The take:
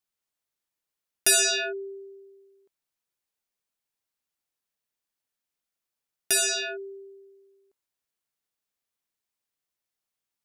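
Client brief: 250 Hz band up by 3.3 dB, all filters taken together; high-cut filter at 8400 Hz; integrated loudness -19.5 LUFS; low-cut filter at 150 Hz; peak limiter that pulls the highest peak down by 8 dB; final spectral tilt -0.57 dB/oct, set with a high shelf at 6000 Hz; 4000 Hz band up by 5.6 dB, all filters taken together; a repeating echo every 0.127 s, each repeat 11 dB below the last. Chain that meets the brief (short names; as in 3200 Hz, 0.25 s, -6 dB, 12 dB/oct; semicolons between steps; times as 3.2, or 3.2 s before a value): HPF 150 Hz; LPF 8400 Hz; bell 250 Hz +8.5 dB; bell 4000 Hz +8 dB; high shelf 6000 Hz -3 dB; limiter -17.5 dBFS; feedback echo 0.127 s, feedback 28%, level -11 dB; gain +5 dB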